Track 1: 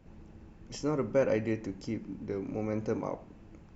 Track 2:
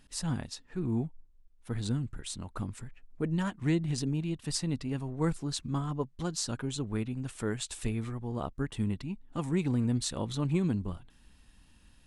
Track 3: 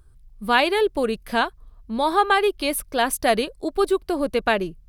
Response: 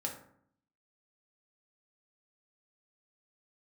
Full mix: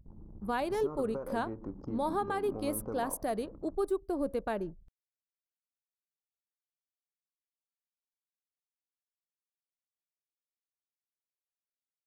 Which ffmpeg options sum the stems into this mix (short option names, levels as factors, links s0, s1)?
-filter_complex "[0:a]highshelf=f=1600:t=q:w=3:g=-11,acompressor=threshold=0.0178:ratio=16,volume=1.06[s0];[2:a]equalizer=f=2900:w=0.65:g=-15,volume=0.398,asplit=2[s1][s2];[s2]volume=0.1[s3];[3:a]atrim=start_sample=2205[s4];[s3][s4]afir=irnorm=-1:irlink=0[s5];[s0][s1][s5]amix=inputs=3:normalize=0,anlmdn=0.01,alimiter=limit=0.075:level=0:latency=1:release=334"